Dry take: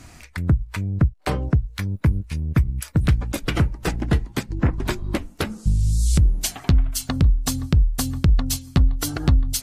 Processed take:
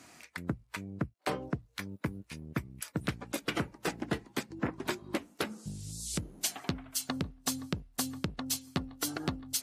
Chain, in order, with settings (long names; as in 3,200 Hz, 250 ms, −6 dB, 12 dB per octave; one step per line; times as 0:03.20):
high-pass filter 240 Hz 12 dB per octave
level −7 dB